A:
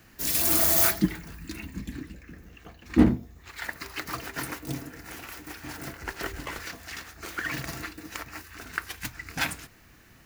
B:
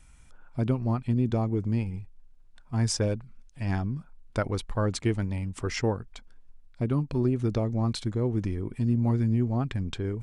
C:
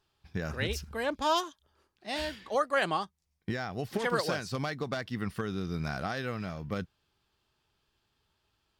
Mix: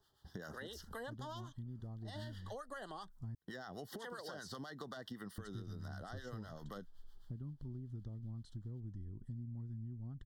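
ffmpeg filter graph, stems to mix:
ffmpeg -i stem1.wav -i stem2.wav -i stem3.wav -filter_complex "[1:a]asubboost=boost=6:cutoff=220,adelay=500,volume=-18dB,asplit=3[link_01][link_02][link_03];[link_01]atrim=end=3.35,asetpts=PTS-STARTPTS,afade=type=out:start_time=3.346:duration=0.004:curve=hsin[link_04];[link_02]atrim=start=3.35:end=5.38,asetpts=PTS-STARTPTS,volume=0[link_05];[link_03]atrim=start=5.38,asetpts=PTS-STARTPTS,afade=type=in:duration=0.004:curve=hsin[link_06];[link_04][link_05][link_06]concat=n=3:v=0:a=1[link_07];[2:a]highshelf=frequency=10000:gain=8.5,acrossover=split=810[link_08][link_09];[link_08]aeval=exprs='val(0)*(1-0.7/2+0.7/2*cos(2*PI*7.8*n/s))':channel_layout=same[link_10];[link_09]aeval=exprs='val(0)*(1-0.7/2-0.7/2*cos(2*PI*7.8*n/s))':channel_layout=same[link_11];[link_10][link_11]amix=inputs=2:normalize=0,volume=3dB,acrossover=split=170|4800[link_12][link_13][link_14];[link_12]acompressor=threshold=-54dB:ratio=4[link_15];[link_13]acompressor=threshold=-30dB:ratio=4[link_16];[link_14]acompressor=threshold=-51dB:ratio=4[link_17];[link_15][link_16][link_17]amix=inputs=3:normalize=0,alimiter=level_in=5.5dB:limit=-24dB:level=0:latency=1:release=126,volume=-5.5dB,volume=0dB[link_18];[link_07][link_18]amix=inputs=2:normalize=0,asuperstop=centerf=2400:order=12:qfactor=2.6,acompressor=threshold=-44dB:ratio=6" out.wav

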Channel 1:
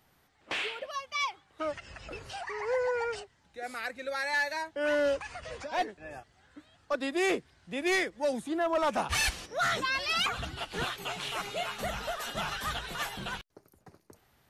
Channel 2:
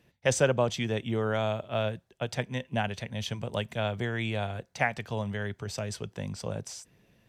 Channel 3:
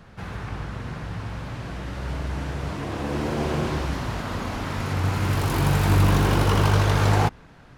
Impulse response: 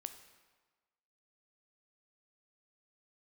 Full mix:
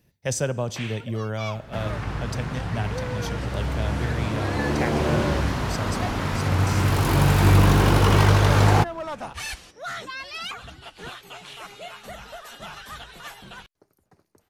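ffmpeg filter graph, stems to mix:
-filter_complex "[0:a]adelay=250,volume=-4.5dB[link_01];[1:a]aexciter=amount=2.9:drive=2.9:freq=4500,lowshelf=frequency=200:gain=9.5,volume=-7dB,asplit=2[link_02][link_03];[link_03]volume=-3.5dB[link_04];[2:a]adelay=1550,volume=2.5dB[link_05];[3:a]atrim=start_sample=2205[link_06];[link_04][link_06]afir=irnorm=-1:irlink=0[link_07];[link_01][link_02][link_05][link_07]amix=inputs=4:normalize=0"

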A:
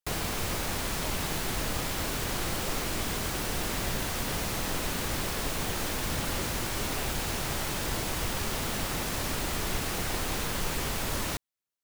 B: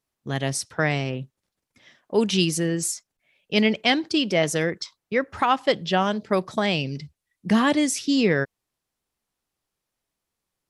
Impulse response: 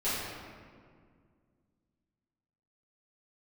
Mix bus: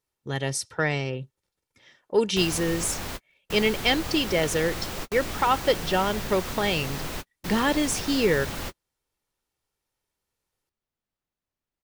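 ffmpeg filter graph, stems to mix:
-filter_complex "[0:a]equalizer=frequency=10000:width_type=o:width=0.99:gain=-4,adelay=2300,volume=-1.5dB[link_01];[1:a]aecho=1:1:2.2:0.4,acontrast=27,volume=-7dB,asplit=2[link_02][link_03];[link_03]apad=whole_len=623362[link_04];[link_01][link_04]sidechaingate=range=-58dB:threshold=-58dB:ratio=16:detection=peak[link_05];[link_05][link_02]amix=inputs=2:normalize=0"

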